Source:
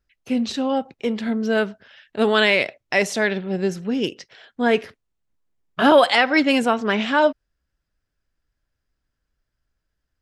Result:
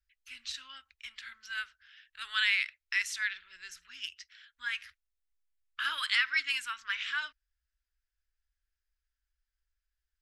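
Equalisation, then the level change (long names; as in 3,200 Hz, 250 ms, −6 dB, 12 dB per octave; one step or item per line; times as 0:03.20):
inverse Chebyshev band-stop filter 120–790 Hz, stop band 40 dB
−8.0 dB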